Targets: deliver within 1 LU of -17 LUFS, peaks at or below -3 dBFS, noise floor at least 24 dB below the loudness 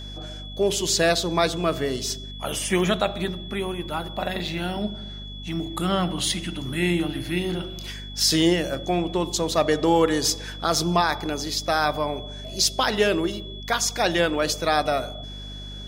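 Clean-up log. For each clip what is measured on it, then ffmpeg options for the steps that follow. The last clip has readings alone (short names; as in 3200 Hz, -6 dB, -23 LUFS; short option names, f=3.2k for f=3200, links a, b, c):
hum 50 Hz; harmonics up to 250 Hz; hum level -36 dBFS; steady tone 3400 Hz; tone level -39 dBFS; loudness -24.0 LUFS; peak -8.0 dBFS; loudness target -17.0 LUFS
-> -af "bandreject=f=50:t=h:w=4,bandreject=f=100:t=h:w=4,bandreject=f=150:t=h:w=4,bandreject=f=200:t=h:w=4,bandreject=f=250:t=h:w=4"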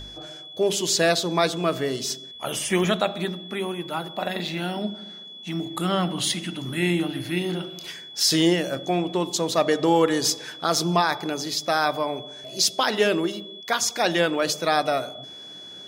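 hum none; steady tone 3400 Hz; tone level -39 dBFS
-> -af "bandreject=f=3.4k:w=30"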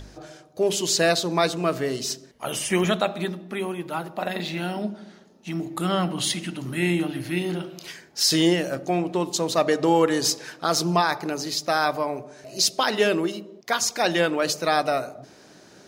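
steady tone none; loudness -24.0 LUFS; peak -8.0 dBFS; loudness target -17.0 LUFS
-> -af "volume=7dB,alimiter=limit=-3dB:level=0:latency=1"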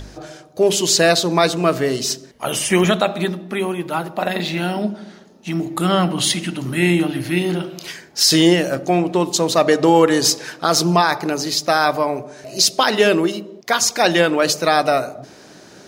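loudness -17.5 LUFS; peak -3.0 dBFS; noise floor -44 dBFS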